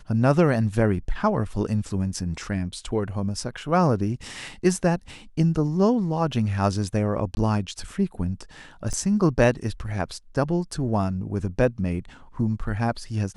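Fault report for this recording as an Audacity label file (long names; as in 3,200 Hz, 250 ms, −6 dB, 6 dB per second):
7.350000	7.370000	drop-out 20 ms
8.930000	8.940000	drop-out 6.1 ms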